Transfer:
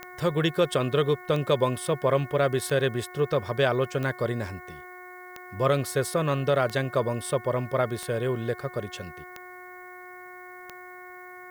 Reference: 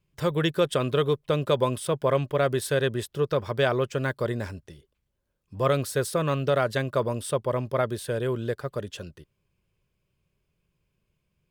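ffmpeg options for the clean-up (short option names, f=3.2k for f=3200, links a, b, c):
-af "adeclick=t=4,bandreject=f=363.1:t=h:w=4,bandreject=f=726.2:t=h:w=4,bandreject=f=1.0893k:t=h:w=4,bandreject=f=1.4524k:t=h:w=4,bandreject=f=1.8155k:t=h:w=4,bandreject=f=2.1786k:t=h:w=4,agate=range=-21dB:threshold=-36dB"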